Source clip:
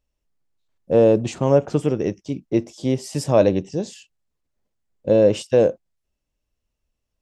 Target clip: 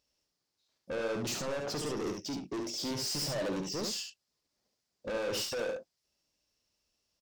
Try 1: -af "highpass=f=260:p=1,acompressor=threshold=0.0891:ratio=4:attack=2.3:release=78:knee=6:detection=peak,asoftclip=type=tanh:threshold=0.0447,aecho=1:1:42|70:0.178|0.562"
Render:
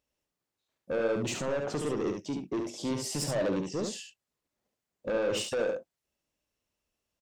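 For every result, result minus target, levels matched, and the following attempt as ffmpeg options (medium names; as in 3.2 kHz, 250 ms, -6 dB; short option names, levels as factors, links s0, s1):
4 kHz band -6.0 dB; saturation: distortion -4 dB
-af "highpass=f=260:p=1,acompressor=threshold=0.0891:ratio=4:attack=2.3:release=78:knee=6:detection=peak,equalizer=f=5000:t=o:w=0.77:g=13,asoftclip=type=tanh:threshold=0.0447,aecho=1:1:42|70:0.178|0.562"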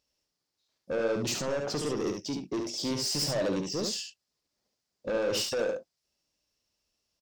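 saturation: distortion -4 dB
-af "highpass=f=260:p=1,acompressor=threshold=0.0891:ratio=4:attack=2.3:release=78:knee=6:detection=peak,equalizer=f=5000:t=o:w=0.77:g=13,asoftclip=type=tanh:threshold=0.0211,aecho=1:1:42|70:0.178|0.562"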